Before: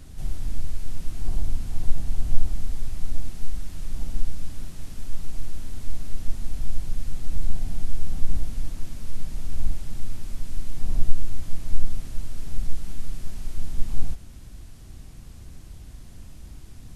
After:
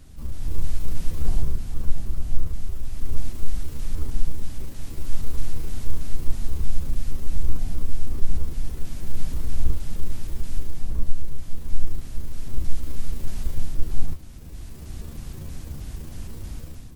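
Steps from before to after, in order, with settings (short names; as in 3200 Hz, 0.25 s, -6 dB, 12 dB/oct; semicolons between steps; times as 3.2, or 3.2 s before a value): trilling pitch shifter +7.5 st, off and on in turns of 0.158 s; AGC; gain -3.5 dB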